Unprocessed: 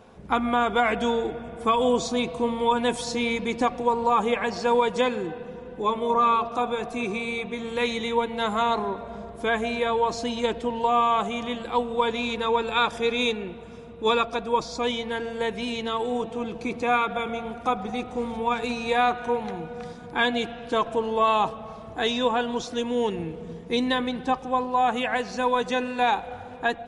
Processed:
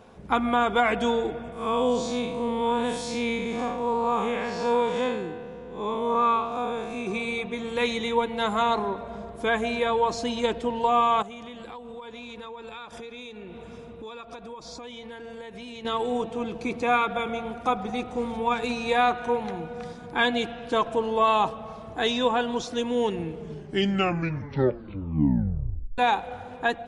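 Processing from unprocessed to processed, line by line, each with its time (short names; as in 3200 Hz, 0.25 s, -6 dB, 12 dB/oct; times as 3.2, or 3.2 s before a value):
1.52–7.07 time blur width 0.14 s
11.22–15.85 compressor 16:1, threshold -36 dBFS
23.32 tape stop 2.66 s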